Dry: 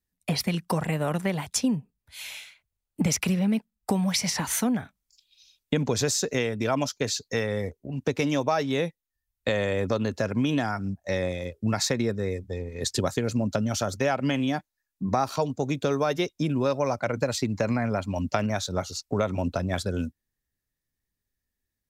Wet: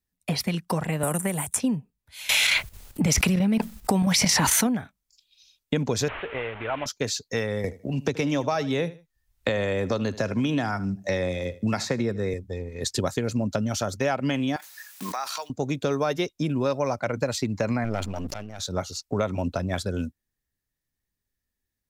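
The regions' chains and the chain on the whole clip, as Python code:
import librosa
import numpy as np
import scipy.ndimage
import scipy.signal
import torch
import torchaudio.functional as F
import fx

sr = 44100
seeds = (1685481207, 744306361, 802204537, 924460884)

y = fx.chain(x, sr, fx.high_shelf_res(hz=6400.0, db=12.5, q=3.0),
    fx.band_squash(depth_pct=100), at=(1.03, 1.6))
y = fx.chain(y, sr, fx.chopper(hz=4.5, depth_pct=65, duty_pct=80),
    fx.env_flatten(amount_pct=100), at=(2.29, 4.67))
y = fx.chain(y, sr, fx.delta_mod(bps=16000, step_db=-29.5),
    fx.peak_eq(hz=200.0, db=-14.0, octaves=1.7), at=(6.08, 6.86))
y = fx.chain(y, sr, fx.high_shelf(hz=11000.0, db=-6.0),
    fx.echo_feedback(ms=77, feedback_pct=23, wet_db=-18.5),
    fx.band_squash(depth_pct=70), at=(7.64, 12.34))
y = fx.chain(y, sr, fx.block_float(bits=7),
    fx.highpass(hz=1200.0, slope=12),
    fx.pre_swell(db_per_s=22.0), at=(14.56, 15.5))
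y = fx.chain(y, sr, fx.halfwave_gain(db=-12.0),
    fx.auto_swell(attack_ms=775.0),
    fx.sustainer(db_per_s=40.0), at=(17.84, 18.6))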